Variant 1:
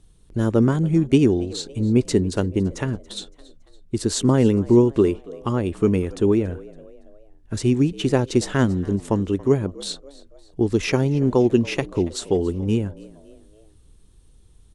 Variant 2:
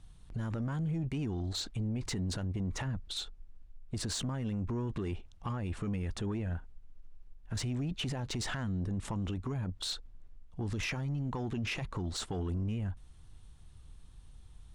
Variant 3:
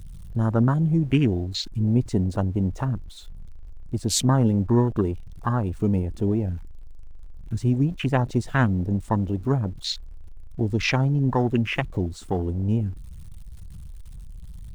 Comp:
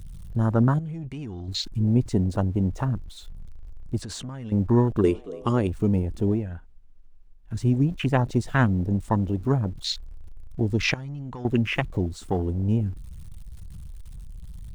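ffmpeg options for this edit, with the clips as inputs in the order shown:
-filter_complex "[1:a]asplit=4[s0][s1][s2][s3];[2:a]asplit=6[s4][s5][s6][s7][s8][s9];[s4]atrim=end=0.792[s10];[s0]atrim=start=0.788:end=1.482[s11];[s5]atrim=start=1.478:end=4.022[s12];[s1]atrim=start=4.018:end=4.522[s13];[s6]atrim=start=4.518:end=5.042[s14];[0:a]atrim=start=5.038:end=5.672[s15];[s7]atrim=start=5.668:end=6.49[s16];[s2]atrim=start=6.33:end=7.62[s17];[s8]atrim=start=7.46:end=10.942[s18];[s3]atrim=start=10.938:end=11.452[s19];[s9]atrim=start=11.448[s20];[s10][s11]acrossfade=d=0.004:c1=hsin:c2=hsin[s21];[s21][s12]acrossfade=d=0.004:c1=hsin:c2=hsin[s22];[s22][s13]acrossfade=d=0.004:c1=hsin:c2=hsin[s23];[s23][s14]acrossfade=d=0.004:c1=hsin:c2=hsin[s24];[s24][s15]acrossfade=d=0.004:c1=hsin:c2=hsin[s25];[s25][s16]acrossfade=d=0.004:c1=hsin:c2=hsin[s26];[s26][s17]acrossfade=d=0.16:c1=tri:c2=tri[s27];[s27][s18]acrossfade=d=0.16:c1=tri:c2=tri[s28];[s28][s19]acrossfade=d=0.004:c1=hsin:c2=hsin[s29];[s29][s20]acrossfade=d=0.004:c1=hsin:c2=hsin"

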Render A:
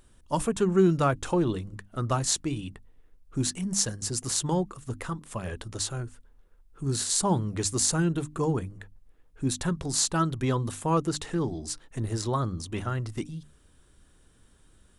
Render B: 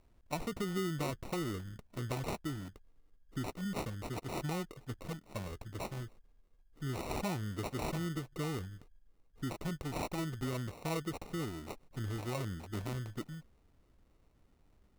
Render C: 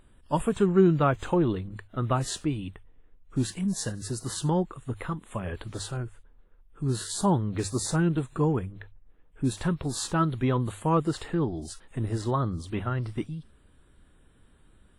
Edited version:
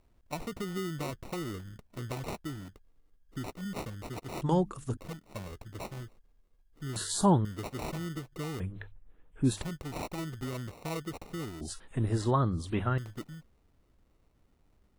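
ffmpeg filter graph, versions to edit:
-filter_complex "[2:a]asplit=3[s0][s1][s2];[1:a]asplit=5[s3][s4][s5][s6][s7];[s3]atrim=end=4.422[s8];[0:a]atrim=start=4.418:end=4.972[s9];[s4]atrim=start=4.968:end=6.962[s10];[s0]atrim=start=6.958:end=7.452[s11];[s5]atrim=start=7.448:end=8.602[s12];[s1]atrim=start=8.598:end=9.622[s13];[s6]atrim=start=9.618:end=11.612[s14];[s2]atrim=start=11.608:end=12.982[s15];[s7]atrim=start=12.978[s16];[s8][s9]acrossfade=d=0.004:c1=hsin:c2=hsin[s17];[s17][s10]acrossfade=d=0.004:c1=hsin:c2=hsin[s18];[s18][s11]acrossfade=d=0.004:c1=hsin:c2=hsin[s19];[s19][s12]acrossfade=d=0.004:c1=hsin:c2=hsin[s20];[s20][s13]acrossfade=d=0.004:c1=hsin:c2=hsin[s21];[s21][s14]acrossfade=d=0.004:c1=hsin:c2=hsin[s22];[s22][s15]acrossfade=d=0.004:c1=hsin:c2=hsin[s23];[s23][s16]acrossfade=d=0.004:c1=hsin:c2=hsin"

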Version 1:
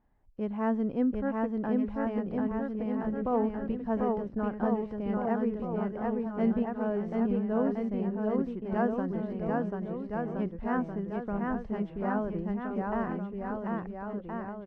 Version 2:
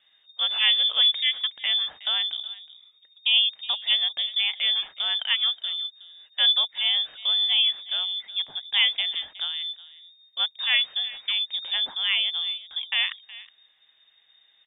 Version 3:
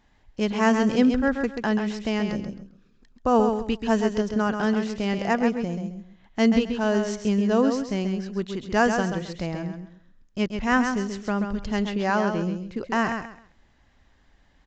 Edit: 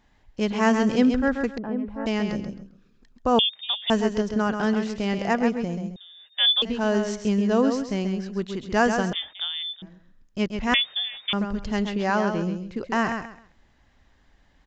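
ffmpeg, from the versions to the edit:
-filter_complex "[1:a]asplit=4[s0][s1][s2][s3];[2:a]asplit=6[s4][s5][s6][s7][s8][s9];[s4]atrim=end=1.582[s10];[0:a]atrim=start=1.578:end=2.062[s11];[s5]atrim=start=2.058:end=3.392[s12];[s0]atrim=start=3.388:end=3.902[s13];[s6]atrim=start=3.898:end=5.962[s14];[s1]atrim=start=5.958:end=6.622[s15];[s7]atrim=start=6.618:end=9.132[s16];[s2]atrim=start=9.128:end=9.822[s17];[s8]atrim=start=9.818:end=10.742[s18];[s3]atrim=start=10.738:end=11.332[s19];[s9]atrim=start=11.328[s20];[s10][s11]acrossfade=d=0.004:c1=hsin:c2=hsin[s21];[s21][s12]acrossfade=d=0.004:c1=hsin:c2=hsin[s22];[s22][s13]acrossfade=d=0.004:c1=hsin:c2=hsin[s23];[s23][s14]acrossfade=d=0.004:c1=hsin:c2=hsin[s24];[s24][s15]acrossfade=d=0.004:c1=hsin:c2=hsin[s25];[s25][s16]acrossfade=d=0.004:c1=hsin:c2=hsin[s26];[s26][s17]acrossfade=d=0.004:c1=hsin:c2=hsin[s27];[s27][s18]acrossfade=d=0.004:c1=hsin:c2=hsin[s28];[s28][s19]acrossfade=d=0.004:c1=hsin:c2=hsin[s29];[s29][s20]acrossfade=d=0.004:c1=hsin:c2=hsin"

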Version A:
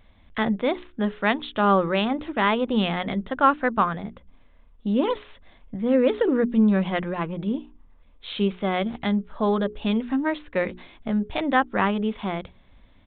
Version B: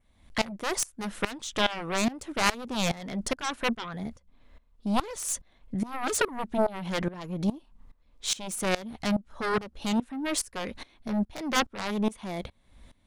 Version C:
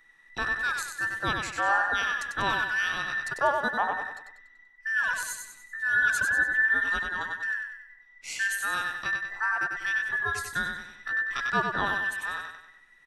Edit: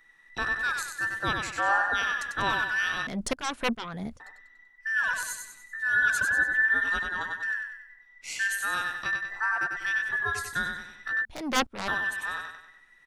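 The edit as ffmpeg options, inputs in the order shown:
-filter_complex "[1:a]asplit=2[s0][s1];[2:a]asplit=3[s2][s3][s4];[s2]atrim=end=3.072[s5];[s0]atrim=start=3.068:end=4.202[s6];[s3]atrim=start=4.198:end=11.252[s7];[s1]atrim=start=11.248:end=11.882[s8];[s4]atrim=start=11.878[s9];[s5][s6]acrossfade=d=0.004:c1=hsin:c2=hsin[s10];[s10][s7]acrossfade=d=0.004:c1=hsin:c2=hsin[s11];[s11][s8]acrossfade=d=0.004:c1=hsin:c2=hsin[s12];[s12][s9]acrossfade=d=0.004:c1=hsin:c2=hsin"

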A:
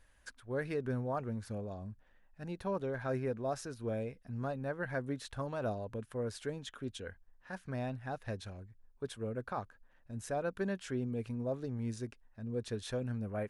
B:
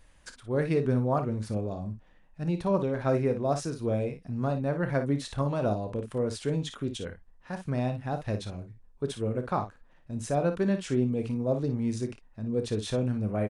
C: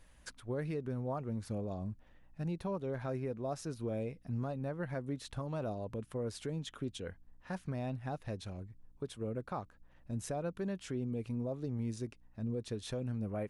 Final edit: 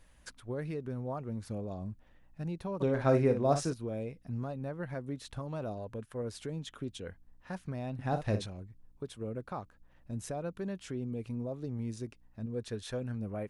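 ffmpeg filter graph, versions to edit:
-filter_complex "[1:a]asplit=2[s0][s1];[0:a]asplit=2[s2][s3];[2:a]asplit=5[s4][s5][s6][s7][s8];[s4]atrim=end=2.82[s9];[s0]atrim=start=2.8:end=3.74[s10];[s5]atrim=start=3.72:end=5.772[s11];[s2]atrim=start=5.768:end=6.222[s12];[s6]atrim=start=6.218:end=7.992[s13];[s1]atrim=start=7.988:end=8.462[s14];[s7]atrim=start=8.458:end=12.462[s15];[s3]atrim=start=12.458:end=13.152[s16];[s8]atrim=start=13.148[s17];[s9][s10]acrossfade=d=0.02:c1=tri:c2=tri[s18];[s18][s11]acrossfade=d=0.02:c1=tri:c2=tri[s19];[s19][s12]acrossfade=d=0.004:c1=hsin:c2=hsin[s20];[s20][s13]acrossfade=d=0.004:c1=hsin:c2=hsin[s21];[s21][s14]acrossfade=d=0.004:c1=hsin:c2=hsin[s22];[s22][s15]acrossfade=d=0.004:c1=hsin:c2=hsin[s23];[s23][s16]acrossfade=d=0.004:c1=hsin:c2=hsin[s24];[s24][s17]acrossfade=d=0.004:c1=hsin:c2=hsin"

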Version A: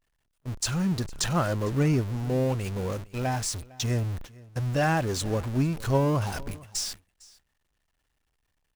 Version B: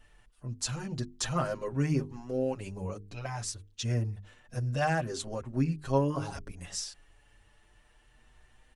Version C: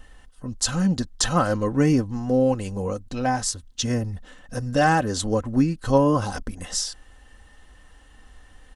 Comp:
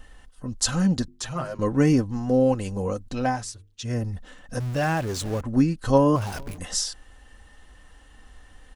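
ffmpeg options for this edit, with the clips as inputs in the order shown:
-filter_complex "[1:a]asplit=2[s0][s1];[0:a]asplit=2[s2][s3];[2:a]asplit=5[s4][s5][s6][s7][s8];[s4]atrim=end=1.082[s9];[s0]atrim=start=1.078:end=1.592[s10];[s5]atrim=start=1.588:end=3.49[s11];[s1]atrim=start=3.25:end=4.07[s12];[s6]atrim=start=3.83:end=4.602[s13];[s2]atrim=start=4.598:end=5.412[s14];[s7]atrim=start=5.408:end=6.162[s15];[s3]atrim=start=6.158:end=6.582[s16];[s8]atrim=start=6.578[s17];[s9][s10]acrossfade=d=0.004:c1=hsin:c2=hsin[s18];[s18][s11]acrossfade=d=0.004:c1=hsin:c2=hsin[s19];[s19][s12]acrossfade=d=0.24:c1=tri:c2=tri[s20];[s20][s13]acrossfade=d=0.24:c1=tri:c2=tri[s21];[s21][s14]acrossfade=d=0.004:c1=hsin:c2=hsin[s22];[s22][s15]acrossfade=d=0.004:c1=hsin:c2=hsin[s23];[s23][s16]acrossfade=d=0.004:c1=hsin:c2=hsin[s24];[s24][s17]acrossfade=d=0.004:c1=hsin:c2=hsin"

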